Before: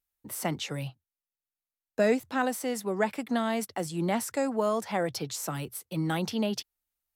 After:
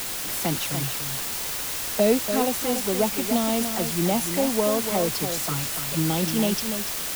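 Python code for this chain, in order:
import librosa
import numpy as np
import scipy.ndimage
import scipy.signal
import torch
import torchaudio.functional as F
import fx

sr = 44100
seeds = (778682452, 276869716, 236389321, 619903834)

p1 = fx.env_flanger(x, sr, rest_ms=11.4, full_db=-27.0)
p2 = fx.quant_dither(p1, sr, seeds[0], bits=6, dither='triangular')
p3 = fx.dmg_noise_colour(p2, sr, seeds[1], colour='pink', level_db=-54.0)
p4 = p3 + fx.echo_single(p3, sr, ms=290, db=-8.0, dry=0)
y = F.gain(torch.from_numpy(p4), 5.5).numpy()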